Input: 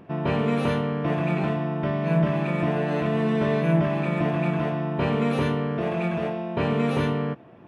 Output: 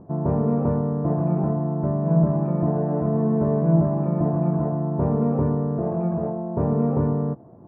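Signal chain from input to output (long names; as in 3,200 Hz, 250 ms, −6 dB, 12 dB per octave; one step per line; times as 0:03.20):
low-pass filter 1,000 Hz 24 dB per octave
low-shelf EQ 140 Hz +8.5 dB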